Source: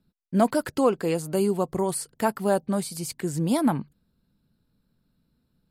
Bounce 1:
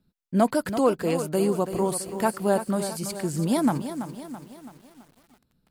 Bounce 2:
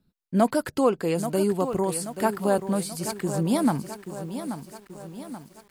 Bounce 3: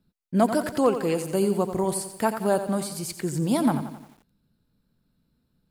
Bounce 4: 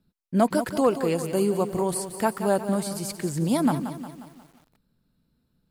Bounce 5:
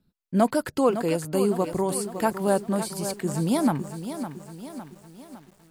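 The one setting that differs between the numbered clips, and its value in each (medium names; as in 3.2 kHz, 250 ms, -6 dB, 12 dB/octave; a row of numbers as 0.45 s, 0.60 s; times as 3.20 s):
bit-crushed delay, time: 332 ms, 832 ms, 88 ms, 179 ms, 558 ms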